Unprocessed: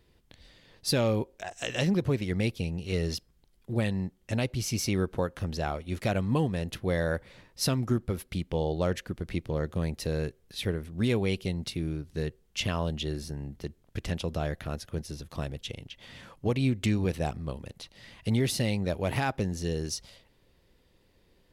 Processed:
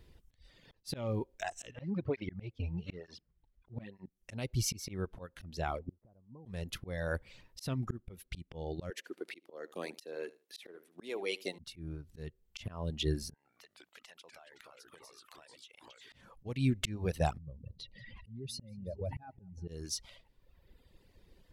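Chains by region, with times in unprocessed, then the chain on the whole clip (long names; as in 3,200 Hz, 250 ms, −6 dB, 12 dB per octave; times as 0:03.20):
0:01.71–0:04.06: low-pass filter 2,700 Hz + through-zero flanger with one copy inverted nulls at 1.1 Hz, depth 6.2 ms
0:05.79–0:06.46: low-pass filter 1,000 Hz 24 dB per octave + gate with flip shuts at −30 dBFS, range −28 dB
0:08.90–0:11.59: high-pass filter 320 Hz 24 dB per octave + repeating echo 75 ms, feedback 18%, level −14 dB
0:13.34–0:16.12: high-pass filter 900 Hz + delay with pitch and tempo change per echo 109 ms, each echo −3 semitones, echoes 2, each echo −6 dB + downward compressor 20 to 1, threshold −51 dBFS
0:17.38–0:19.68: expanding power law on the bin magnitudes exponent 2 + downward compressor 1.5 to 1, threshold −51 dBFS + repeating echo 184 ms, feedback 39%, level −14 dB
whole clip: reverb reduction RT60 1.1 s; low-shelf EQ 100 Hz +8 dB; volume swells 402 ms; level +1 dB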